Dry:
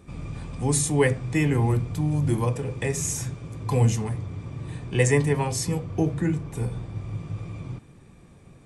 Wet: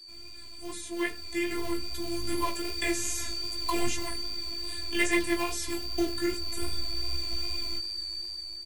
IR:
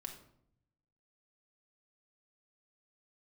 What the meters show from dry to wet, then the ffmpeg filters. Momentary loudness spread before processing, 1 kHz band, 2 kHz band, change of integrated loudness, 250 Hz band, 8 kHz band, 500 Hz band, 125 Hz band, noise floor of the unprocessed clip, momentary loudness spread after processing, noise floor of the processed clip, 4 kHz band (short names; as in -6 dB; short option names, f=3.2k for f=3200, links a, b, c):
14 LU, -3.0 dB, 0.0 dB, -5.5 dB, -5.5 dB, -5.0 dB, -7.5 dB, -22.5 dB, -51 dBFS, 6 LU, -43 dBFS, +10.0 dB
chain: -filter_complex "[0:a]asubboost=boost=5.5:cutoff=58,acrossover=split=410|1200[a][b][c];[b]acrusher=bits=2:mode=log:mix=0:aa=0.000001[d];[a][d][c]amix=inputs=3:normalize=0,afftfilt=real='hypot(re,im)*cos(PI*b)':imag='0':win_size=512:overlap=0.75,aeval=exprs='val(0)+0.00447*sin(2*PI*4600*n/s)':c=same,crystalizer=i=6:c=0,asplit=2[e][f];[f]adelay=95,lowpass=f=2k:p=1,volume=-22dB,asplit=2[g][h];[h]adelay=95,lowpass=f=2k:p=1,volume=0.17[i];[g][i]amix=inputs=2:normalize=0[j];[e][j]amix=inputs=2:normalize=0,acrossover=split=3500[k][l];[l]acompressor=threshold=-34dB:ratio=4:attack=1:release=60[m];[k][m]amix=inputs=2:normalize=0,flanger=delay=15:depth=3.1:speed=2.5,dynaudnorm=f=540:g=5:m=14dB,volume=-8dB"